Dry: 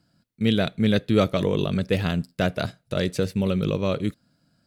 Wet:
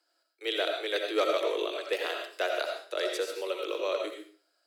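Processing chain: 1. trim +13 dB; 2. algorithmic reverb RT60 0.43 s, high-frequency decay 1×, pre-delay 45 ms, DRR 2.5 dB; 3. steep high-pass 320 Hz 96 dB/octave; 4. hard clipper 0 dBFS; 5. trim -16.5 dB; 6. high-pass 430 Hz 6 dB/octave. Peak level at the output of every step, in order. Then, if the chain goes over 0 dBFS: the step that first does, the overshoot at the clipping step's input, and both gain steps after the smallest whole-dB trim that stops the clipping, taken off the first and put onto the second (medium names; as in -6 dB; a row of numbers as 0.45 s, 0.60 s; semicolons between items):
+5.5 dBFS, +5.5 dBFS, +4.5 dBFS, 0.0 dBFS, -16.5 dBFS, -15.0 dBFS; step 1, 4.5 dB; step 1 +8 dB, step 5 -11.5 dB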